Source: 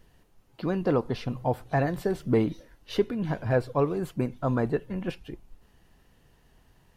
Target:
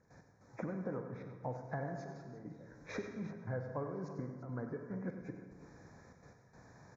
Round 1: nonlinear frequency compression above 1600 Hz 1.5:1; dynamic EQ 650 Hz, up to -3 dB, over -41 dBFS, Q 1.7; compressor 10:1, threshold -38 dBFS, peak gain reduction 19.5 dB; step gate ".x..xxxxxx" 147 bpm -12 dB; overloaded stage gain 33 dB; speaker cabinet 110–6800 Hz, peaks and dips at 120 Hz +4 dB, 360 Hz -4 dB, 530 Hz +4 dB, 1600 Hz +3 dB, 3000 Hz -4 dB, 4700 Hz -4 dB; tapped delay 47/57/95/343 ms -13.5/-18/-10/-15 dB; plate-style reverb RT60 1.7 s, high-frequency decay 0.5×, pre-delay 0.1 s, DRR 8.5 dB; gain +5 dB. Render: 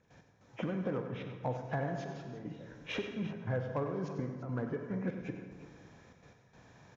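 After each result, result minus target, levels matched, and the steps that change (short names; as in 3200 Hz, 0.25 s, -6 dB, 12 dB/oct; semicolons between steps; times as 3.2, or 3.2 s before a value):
4000 Hz band +9.0 dB; compressor: peak gain reduction -5.5 dB
add after dynamic EQ: Butterworth band-stop 3000 Hz, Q 1.3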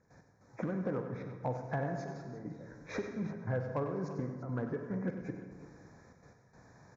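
compressor: peak gain reduction -5.5 dB
change: compressor 10:1, threshold -44 dBFS, peak gain reduction 25 dB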